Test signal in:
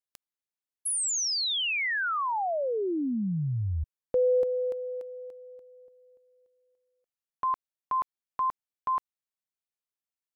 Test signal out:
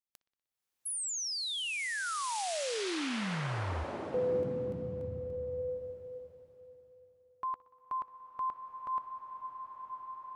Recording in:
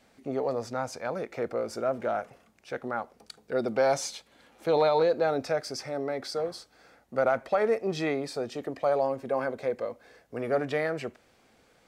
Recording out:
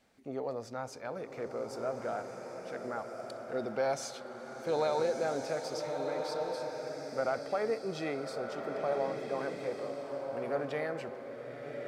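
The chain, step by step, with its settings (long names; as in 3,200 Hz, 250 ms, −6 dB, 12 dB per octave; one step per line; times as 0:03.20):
on a send: bucket-brigade delay 61 ms, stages 2,048, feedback 69%, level −21 dB
on the sum: slow-attack reverb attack 1,480 ms, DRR 3.5 dB
level −7.5 dB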